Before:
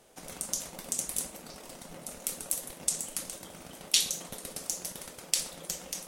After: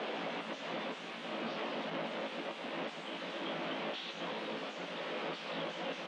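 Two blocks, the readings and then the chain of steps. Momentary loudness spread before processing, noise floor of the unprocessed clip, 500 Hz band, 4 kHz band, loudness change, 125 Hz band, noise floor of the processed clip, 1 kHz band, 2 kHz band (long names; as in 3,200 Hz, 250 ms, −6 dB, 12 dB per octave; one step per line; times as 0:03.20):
19 LU, −50 dBFS, +7.5 dB, −7.0 dB, −7.5 dB, −1.0 dB, −46 dBFS, +8.5 dB, +5.0 dB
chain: sign of each sample alone
elliptic band-pass filter 210–3,200 Hz, stop band 70 dB
double-tracking delay 18 ms −5 dB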